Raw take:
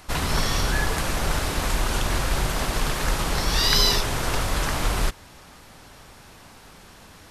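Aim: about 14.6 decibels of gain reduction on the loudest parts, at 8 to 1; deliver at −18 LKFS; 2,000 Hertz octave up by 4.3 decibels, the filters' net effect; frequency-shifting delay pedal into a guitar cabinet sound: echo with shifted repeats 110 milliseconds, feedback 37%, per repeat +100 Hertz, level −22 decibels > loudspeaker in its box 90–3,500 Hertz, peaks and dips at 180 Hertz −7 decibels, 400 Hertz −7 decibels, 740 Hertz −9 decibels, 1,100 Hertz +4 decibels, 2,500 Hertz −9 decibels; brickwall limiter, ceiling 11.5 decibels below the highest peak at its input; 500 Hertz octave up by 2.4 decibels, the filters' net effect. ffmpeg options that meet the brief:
ffmpeg -i in.wav -filter_complex "[0:a]equalizer=frequency=500:width_type=o:gain=7.5,equalizer=frequency=2000:width_type=o:gain=7,acompressor=threshold=-28dB:ratio=8,alimiter=level_in=1dB:limit=-24dB:level=0:latency=1,volume=-1dB,asplit=4[link_01][link_02][link_03][link_04];[link_02]adelay=110,afreqshift=100,volume=-22dB[link_05];[link_03]adelay=220,afreqshift=200,volume=-30.6dB[link_06];[link_04]adelay=330,afreqshift=300,volume=-39.3dB[link_07];[link_01][link_05][link_06][link_07]amix=inputs=4:normalize=0,highpass=90,equalizer=frequency=180:width_type=q:width=4:gain=-7,equalizer=frequency=400:width_type=q:width=4:gain=-7,equalizer=frequency=740:width_type=q:width=4:gain=-9,equalizer=frequency=1100:width_type=q:width=4:gain=4,equalizer=frequency=2500:width_type=q:width=4:gain=-9,lowpass=frequency=3500:width=0.5412,lowpass=frequency=3500:width=1.3066,volume=21dB" out.wav

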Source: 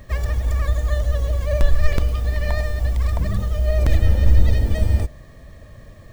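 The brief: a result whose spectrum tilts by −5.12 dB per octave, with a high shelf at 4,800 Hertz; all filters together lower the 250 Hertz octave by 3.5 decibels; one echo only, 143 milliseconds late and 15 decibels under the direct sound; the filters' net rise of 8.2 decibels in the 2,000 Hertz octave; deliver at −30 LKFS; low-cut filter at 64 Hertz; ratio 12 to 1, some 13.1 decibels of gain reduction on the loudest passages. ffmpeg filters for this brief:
ffmpeg -i in.wav -af "highpass=64,equalizer=frequency=250:width_type=o:gain=-5,equalizer=frequency=2000:width_type=o:gain=8.5,highshelf=frequency=4800:gain=5.5,acompressor=threshold=-28dB:ratio=12,aecho=1:1:143:0.178,volume=3dB" out.wav

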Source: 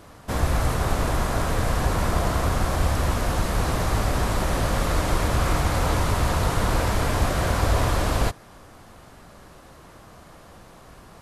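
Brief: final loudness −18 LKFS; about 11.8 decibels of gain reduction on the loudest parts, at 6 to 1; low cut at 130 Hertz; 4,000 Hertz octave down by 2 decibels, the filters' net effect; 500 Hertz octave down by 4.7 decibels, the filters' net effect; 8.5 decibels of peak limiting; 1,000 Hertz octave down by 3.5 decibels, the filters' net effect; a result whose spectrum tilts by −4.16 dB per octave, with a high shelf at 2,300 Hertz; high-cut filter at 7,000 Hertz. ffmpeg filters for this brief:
ffmpeg -i in.wav -af "highpass=130,lowpass=7000,equalizer=frequency=500:width_type=o:gain=-5,equalizer=frequency=1000:width_type=o:gain=-4,highshelf=frequency=2300:gain=7,equalizer=frequency=4000:width_type=o:gain=-8.5,acompressor=threshold=-37dB:ratio=6,volume=26dB,alimiter=limit=-8dB:level=0:latency=1" out.wav

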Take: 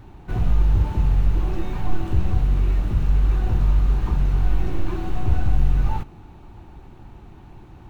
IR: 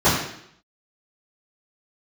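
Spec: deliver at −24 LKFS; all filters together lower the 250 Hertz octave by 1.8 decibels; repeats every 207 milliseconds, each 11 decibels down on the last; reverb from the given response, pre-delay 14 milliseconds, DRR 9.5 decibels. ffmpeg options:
-filter_complex "[0:a]equalizer=frequency=250:width_type=o:gain=-3,aecho=1:1:207|414|621:0.282|0.0789|0.0221,asplit=2[link_01][link_02];[1:a]atrim=start_sample=2205,adelay=14[link_03];[link_02][link_03]afir=irnorm=-1:irlink=0,volume=-31.5dB[link_04];[link_01][link_04]amix=inputs=2:normalize=0,volume=-0.5dB"

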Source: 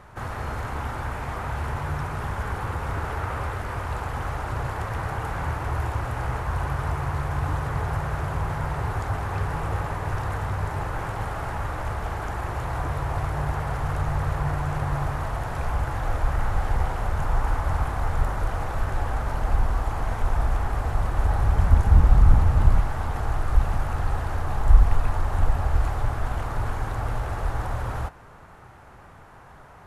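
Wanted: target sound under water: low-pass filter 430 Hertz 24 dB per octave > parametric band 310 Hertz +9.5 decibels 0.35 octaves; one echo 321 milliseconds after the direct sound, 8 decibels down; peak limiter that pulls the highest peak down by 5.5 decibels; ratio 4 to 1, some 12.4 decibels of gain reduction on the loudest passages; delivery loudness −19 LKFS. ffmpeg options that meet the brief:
ffmpeg -i in.wav -af "acompressor=threshold=-24dB:ratio=4,alimiter=limit=-20.5dB:level=0:latency=1,lowpass=frequency=430:width=0.5412,lowpass=frequency=430:width=1.3066,equalizer=frequency=310:width_type=o:width=0.35:gain=9.5,aecho=1:1:321:0.398,volume=13.5dB" out.wav

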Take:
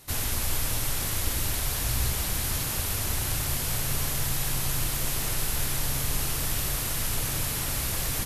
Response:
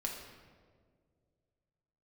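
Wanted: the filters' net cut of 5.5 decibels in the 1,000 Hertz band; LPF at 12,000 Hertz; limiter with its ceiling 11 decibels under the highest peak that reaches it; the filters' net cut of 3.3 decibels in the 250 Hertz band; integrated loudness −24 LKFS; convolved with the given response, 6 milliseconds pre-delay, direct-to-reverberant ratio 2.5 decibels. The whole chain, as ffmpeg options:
-filter_complex "[0:a]lowpass=12000,equalizer=frequency=250:width_type=o:gain=-5,equalizer=frequency=1000:width_type=o:gain=-7,alimiter=level_in=1dB:limit=-24dB:level=0:latency=1,volume=-1dB,asplit=2[link_01][link_02];[1:a]atrim=start_sample=2205,adelay=6[link_03];[link_02][link_03]afir=irnorm=-1:irlink=0,volume=-3.5dB[link_04];[link_01][link_04]amix=inputs=2:normalize=0,volume=8.5dB"

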